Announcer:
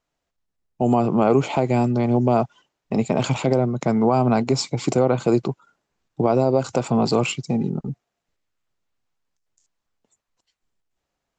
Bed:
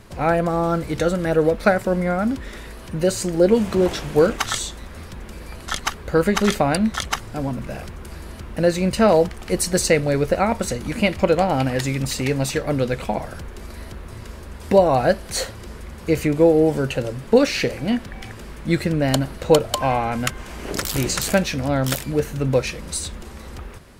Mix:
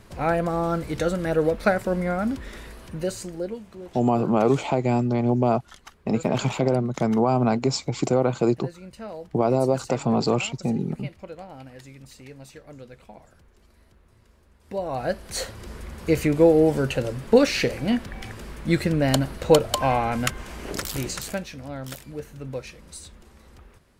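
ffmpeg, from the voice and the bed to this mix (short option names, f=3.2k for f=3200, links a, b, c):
-filter_complex "[0:a]adelay=3150,volume=-2.5dB[a];[1:a]volume=16.5dB,afade=t=out:st=2.63:d=0.99:silence=0.125893,afade=t=in:st=14.64:d=1.18:silence=0.0944061,afade=t=out:st=20.29:d=1.18:silence=0.237137[b];[a][b]amix=inputs=2:normalize=0"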